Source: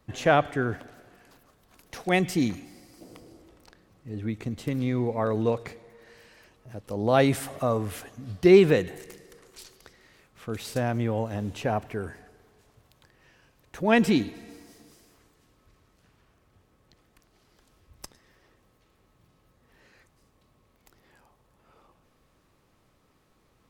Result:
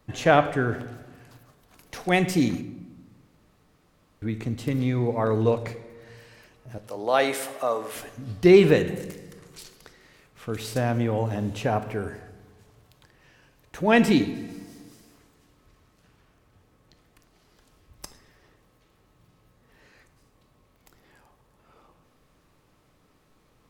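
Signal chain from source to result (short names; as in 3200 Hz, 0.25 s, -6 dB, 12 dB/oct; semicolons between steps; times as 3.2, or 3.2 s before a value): 2.61–4.22 room tone; 6.78–7.95 HPF 490 Hz 12 dB/oct; shoebox room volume 400 m³, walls mixed, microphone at 0.41 m; gain +2 dB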